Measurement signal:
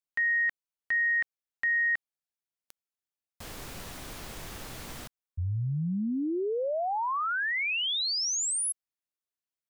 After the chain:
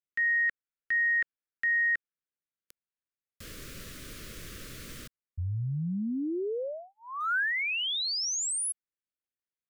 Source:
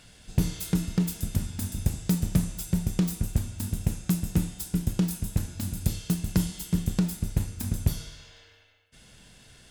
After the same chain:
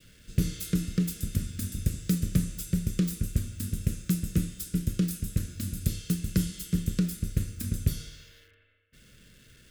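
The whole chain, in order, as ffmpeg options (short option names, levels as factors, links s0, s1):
-filter_complex "[0:a]adynamicequalizer=threshold=0.00794:dfrequency=1500:dqfactor=2.9:tfrequency=1500:tqfactor=2.9:attack=5:release=100:ratio=0.4:range=2.5:mode=boostabove:tftype=bell,acrossover=split=400|2900[s0][s1][s2];[s2]aeval=exprs='val(0)*gte(abs(val(0)),0.00158)':c=same[s3];[s0][s1][s3]amix=inputs=3:normalize=0,asuperstop=centerf=830:order=4:qfactor=1.2,volume=0.841"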